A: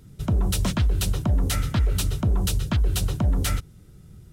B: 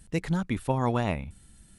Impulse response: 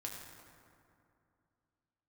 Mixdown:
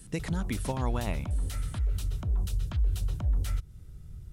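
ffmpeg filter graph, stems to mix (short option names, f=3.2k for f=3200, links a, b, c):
-filter_complex "[0:a]alimiter=level_in=0.5dB:limit=-24dB:level=0:latency=1:release=173,volume=-0.5dB,asubboost=boost=5:cutoff=100,volume=-5.5dB[a];[1:a]highshelf=f=4.3k:g=7,acompressor=threshold=-30dB:ratio=5,volume=1dB[b];[a][b]amix=inputs=2:normalize=0"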